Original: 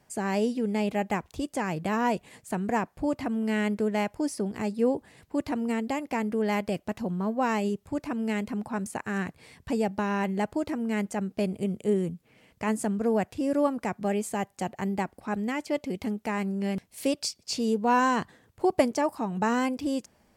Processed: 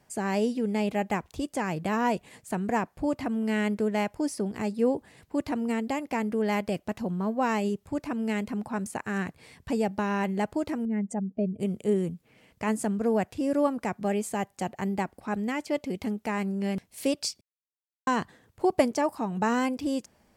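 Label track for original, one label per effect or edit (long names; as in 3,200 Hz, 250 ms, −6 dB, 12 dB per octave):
10.850000	11.600000	expanding power law on the bin magnitudes exponent 1.8
17.410000	18.070000	silence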